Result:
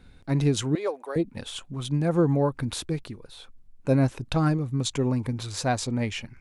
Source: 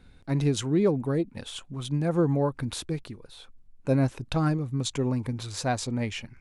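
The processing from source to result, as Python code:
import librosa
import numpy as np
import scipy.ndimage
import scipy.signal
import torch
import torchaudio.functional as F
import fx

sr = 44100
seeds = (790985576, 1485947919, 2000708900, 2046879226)

y = fx.highpass(x, sr, hz=510.0, slope=24, at=(0.75, 1.16))
y = y * 10.0 ** (2.0 / 20.0)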